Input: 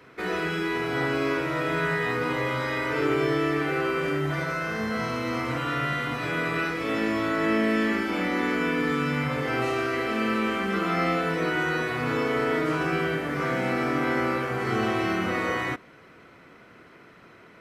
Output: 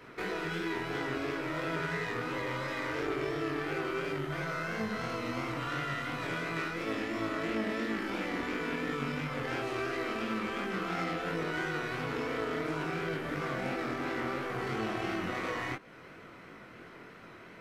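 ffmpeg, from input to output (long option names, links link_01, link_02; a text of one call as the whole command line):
ffmpeg -i in.wav -af "acompressor=threshold=-37dB:ratio=2.5,aeval=exprs='0.0708*(cos(1*acos(clip(val(0)/0.0708,-1,1)))-cos(1*PI/2))+0.0282*(cos(2*acos(clip(val(0)/0.0708,-1,1)))-cos(2*PI/2))+0.00447*(cos(8*acos(clip(val(0)/0.0708,-1,1)))-cos(8*PI/2))':channel_layout=same,flanger=delay=18:depth=7.7:speed=2.9,volume=3.5dB" out.wav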